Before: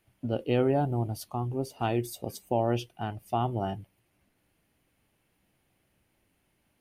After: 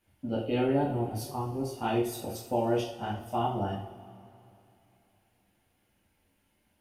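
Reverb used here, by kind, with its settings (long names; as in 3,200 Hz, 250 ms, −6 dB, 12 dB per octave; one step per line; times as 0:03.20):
coupled-rooms reverb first 0.44 s, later 2.9 s, from −20 dB, DRR −6.5 dB
level −7 dB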